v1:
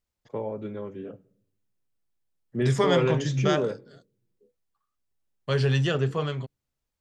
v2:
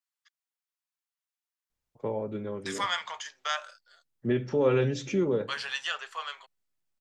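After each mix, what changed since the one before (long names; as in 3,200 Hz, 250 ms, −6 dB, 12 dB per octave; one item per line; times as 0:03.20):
first voice: entry +1.70 s
second voice: add high-pass filter 910 Hz 24 dB per octave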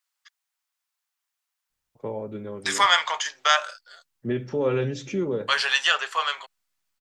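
second voice +11.5 dB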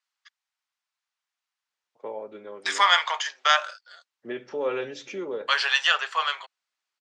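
master: add band-pass filter 490–5,700 Hz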